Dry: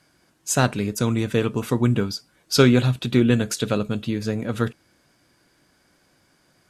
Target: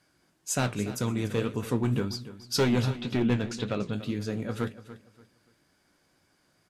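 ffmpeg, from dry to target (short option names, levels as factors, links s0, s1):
-filter_complex "[0:a]asettb=1/sr,asplit=3[s0][s1][s2];[s0]atrim=end=2.904[s3];[s1]atrim=start=2.9:end=3.93,asetpts=PTS-STARTPTS,afade=t=in:d=0.004:c=qsin,afade=t=out:st=1.026:d=0.004:c=qsin,lowpass=4600[s4];[s2]atrim=start=3.926[s5];[s3][s4]acrossfade=d=0.004:c1=hsin:c2=qsin[s6];[s6][s5]acrossfade=d=0.004:c1=qsin:c2=hsin,asoftclip=type=hard:threshold=0.251,flanger=delay=9.6:depth=9.9:regen=56:speed=1.9:shape=sinusoidal,aecho=1:1:289|578|867:0.178|0.048|0.013,volume=0.75"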